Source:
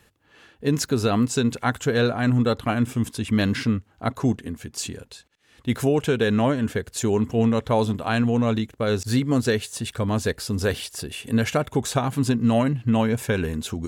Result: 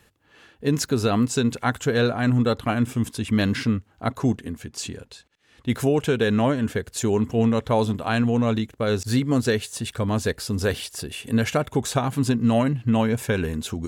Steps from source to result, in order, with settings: 4.62–5.7 high shelf 11000 Hz -9.5 dB

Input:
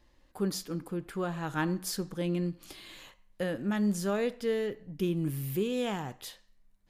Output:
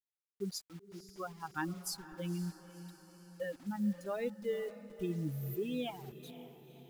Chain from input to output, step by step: per-bin expansion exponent 3; 1.43–1.92 notches 60/120/180/240/300/360 Hz; 3.59–4.01 LPF 1400 Hz 24 dB/oct; in parallel at -1 dB: level quantiser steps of 21 dB; on the sum: bit-crush 9-bit; diffused feedback echo 0.514 s, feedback 55%, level -14 dB; gain -4.5 dB

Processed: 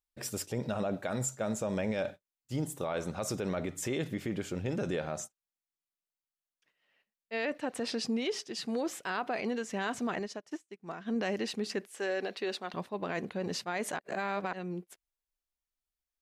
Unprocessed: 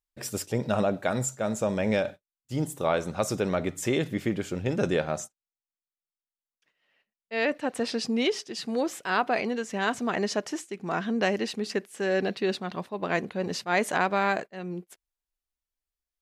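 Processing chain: 11.87–12.74 HPF 370 Hz 12 dB/oct; 13.99–14.53 reverse; limiter -21 dBFS, peak gain reduction 9.5 dB; 10.19–11.16 upward expander 2.5:1, over -46 dBFS; gain -3 dB

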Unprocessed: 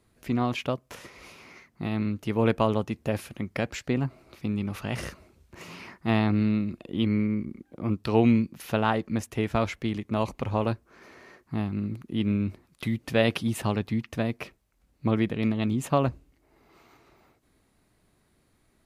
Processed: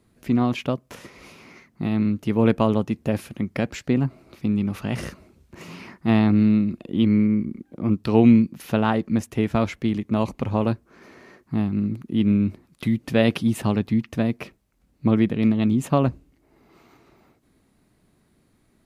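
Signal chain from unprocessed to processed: bell 210 Hz +6.5 dB 1.7 oct; gain +1 dB

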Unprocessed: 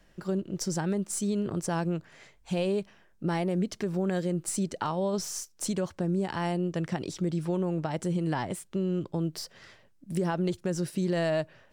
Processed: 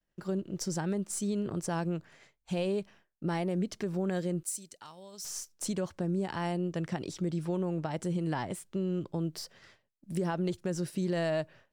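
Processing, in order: 4.43–5.25 pre-emphasis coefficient 0.9; expander -48 dBFS; gain -3 dB

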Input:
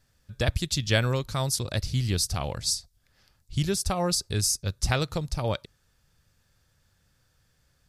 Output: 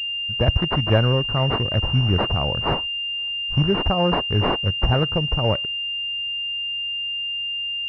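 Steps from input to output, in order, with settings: one-sided fold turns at -16.5 dBFS; pulse-width modulation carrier 2800 Hz; gain +7 dB

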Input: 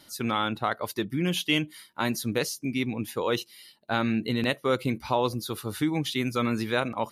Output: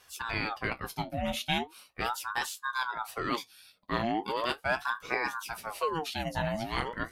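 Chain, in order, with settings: flange 0.5 Hz, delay 8.2 ms, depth 9.4 ms, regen -45%; ring modulator with a swept carrier 880 Hz, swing 55%, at 0.39 Hz; gain +1.5 dB

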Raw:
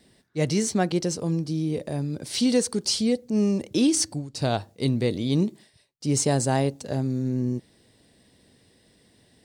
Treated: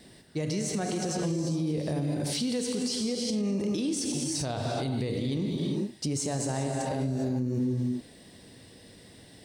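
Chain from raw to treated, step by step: non-linear reverb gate 0.44 s flat, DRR 3 dB; compressor, threshold -29 dBFS, peak gain reduction 13 dB; limiter -28 dBFS, peak gain reduction 8.5 dB; gain +6 dB

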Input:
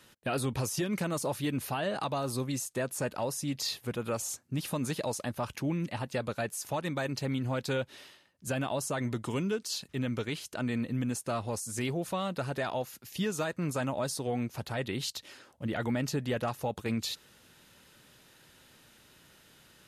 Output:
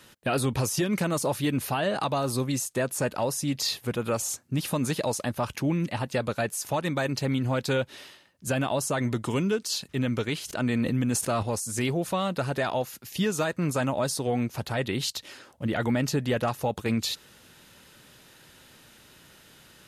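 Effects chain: 10.4–11.43 sustainer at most 32 dB/s; gain +5.5 dB

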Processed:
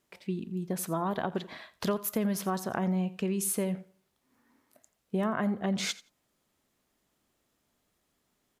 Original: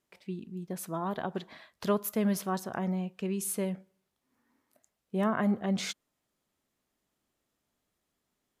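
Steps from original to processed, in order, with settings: compressor 6:1, threshold -32 dBFS, peak gain reduction 9.5 dB; feedback echo 86 ms, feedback 16%, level -19 dB; gain +5.5 dB

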